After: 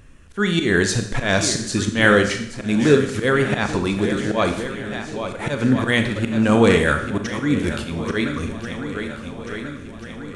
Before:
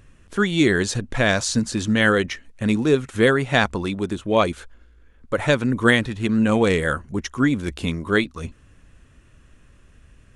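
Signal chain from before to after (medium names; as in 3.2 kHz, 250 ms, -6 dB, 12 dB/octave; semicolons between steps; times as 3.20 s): shuffle delay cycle 1388 ms, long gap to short 1.5:1, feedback 53%, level -14 dB; slow attack 154 ms; Schroeder reverb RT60 0.72 s, combs from 27 ms, DRR 6.5 dB; trim +3 dB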